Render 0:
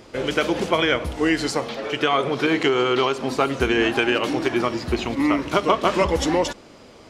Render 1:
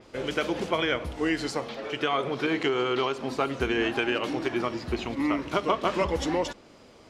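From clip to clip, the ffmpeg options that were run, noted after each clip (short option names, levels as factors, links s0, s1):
-af "adynamicequalizer=threshold=0.00891:dfrequency=5500:dqfactor=0.7:tfrequency=5500:tqfactor=0.7:attack=5:release=100:ratio=0.375:range=2:mode=cutabove:tftype=highshelf,volume=0.473"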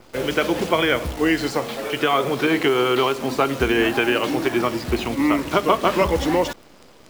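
-filter_complex "[0:a]acrossover=split=190|3200[s0][s1][s2];[s2]alimiter=level_in=2.99:limit=0.0631:level=0:latency=1,volume=0.335[s3];[s0][s1][s3]amix=inputs=3:normalize=0,acrusher=bits=8:dc=4:mix=0:aa=0.000001,volume=2.37"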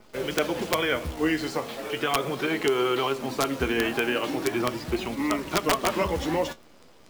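-af "flanger=delay=4.7:depth=8.3:regen=53:speed=0.38:shape=sinusoidal,aeval=exprs='(mod(3.55*val(0)+1,2)-1)/3.55':c=same,volume=0.794"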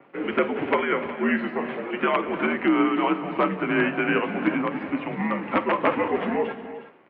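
-af "highpass=f=290:t=q:w=0.5412,highpass=f=290:t=q:w=1.307,lowpass=f=2600:t=q:w=0.5176,lowpass=f=2600:t=q:w=0.7071,lowpass=f=2600:t=q:w=1.932,afreqshift=-83,tremolo=f=2.9:d=0.39,aecho=1:1:48|187|300|363:0.15|0.141|0.168|0.188,volume=1.78"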